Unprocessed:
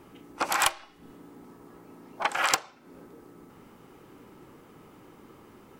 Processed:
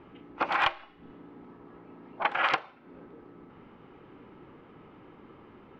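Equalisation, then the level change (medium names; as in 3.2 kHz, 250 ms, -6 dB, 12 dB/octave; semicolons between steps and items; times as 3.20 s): low-pass 3.2 kHz 24 dB/octave; 0.0 dB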